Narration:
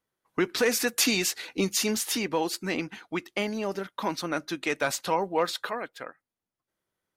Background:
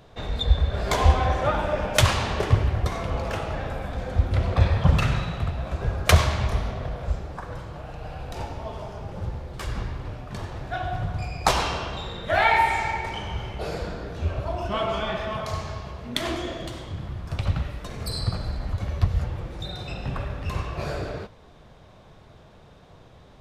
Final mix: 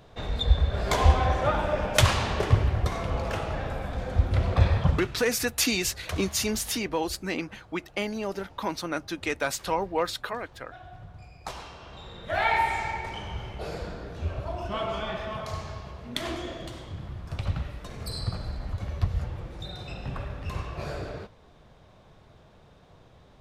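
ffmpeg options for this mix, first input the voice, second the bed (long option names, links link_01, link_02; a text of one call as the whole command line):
ffmpeg -i stem1.wav -i stem2.wav -filter_complex "[0:a]adelay=4600,volume=-1dB[link_01];[1:a]volume=11dB,afade=type=out:start_time=4.76:duration=0.32:silence=0.16788,afade=type=in:start_time=11.77:duration=0.76:silence=0.237137[link_02];[link_01][link_02]amix=inputs=2:normalize=0" out.wav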